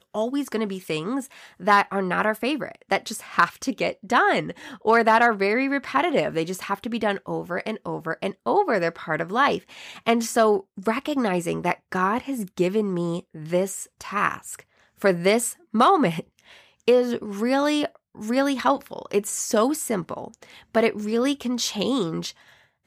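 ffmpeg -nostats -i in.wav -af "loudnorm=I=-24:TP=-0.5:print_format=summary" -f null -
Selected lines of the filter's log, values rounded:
Input Integrated:    -23.8 LUFS
Input True Peak:      -5.1 dBTP
Input LRA:             4.7 LU
Input Threshold:     -34.2 LUFS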